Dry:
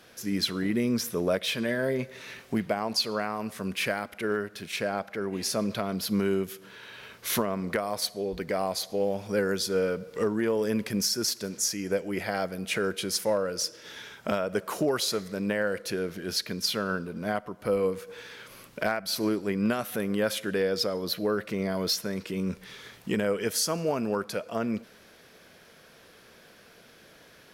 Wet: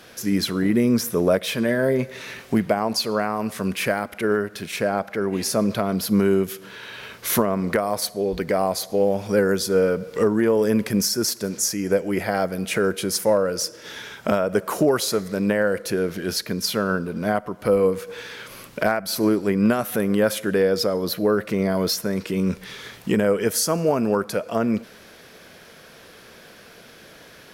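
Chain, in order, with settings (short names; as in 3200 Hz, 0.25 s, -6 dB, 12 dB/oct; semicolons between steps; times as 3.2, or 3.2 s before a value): dynamic EQ 3500 Hz, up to -7 dB, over -44 dBFS, Q 0.71; gain +8 dB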